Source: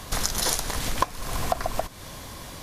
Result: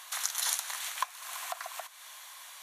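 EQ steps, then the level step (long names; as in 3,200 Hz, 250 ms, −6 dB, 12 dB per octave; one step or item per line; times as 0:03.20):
Bessel high-pass filter 1,300 Hz, order 8
parametric band 5,000 Hz −9 dB 0.23 octaves
−3.5 dB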